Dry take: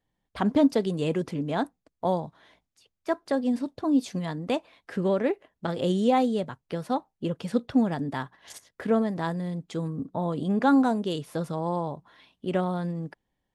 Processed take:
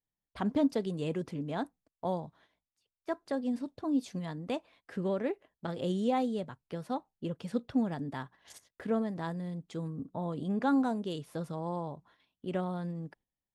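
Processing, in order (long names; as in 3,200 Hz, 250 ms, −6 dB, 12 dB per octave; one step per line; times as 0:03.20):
low-shelf EQ 190 Hz +3 dB
noise gate −53 dBFS, range −10 dB
level −8 dB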